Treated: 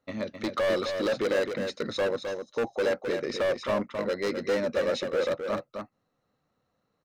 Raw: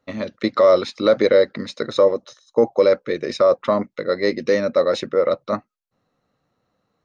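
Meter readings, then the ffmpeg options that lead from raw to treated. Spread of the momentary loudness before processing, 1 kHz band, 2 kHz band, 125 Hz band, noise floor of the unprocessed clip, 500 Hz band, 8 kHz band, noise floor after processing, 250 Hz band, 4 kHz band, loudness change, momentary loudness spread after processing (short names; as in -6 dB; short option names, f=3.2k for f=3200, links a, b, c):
10 LU, -9.5 dB, -3.5 dB, -6.5 dB, -76 dBFS, -10.5 dB, n/a, -78 dBFS, -8.0 dB, -6.0 dB, -10.0 dB, 7 LU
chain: -filter_complex "[0:a]volume=17.5dB,asoftclip=hard,volume=-17.5dB,asplit=2[a][b];[b]aecho=0:1:261:0.473[c];[a][c]amix=inputs=2:normalize=0,volume=-6dB"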